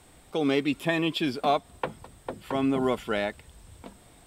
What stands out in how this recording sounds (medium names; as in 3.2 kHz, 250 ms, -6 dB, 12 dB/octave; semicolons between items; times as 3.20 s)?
noise floor -56 dBFS; spectral tilt -4.0 dB/octave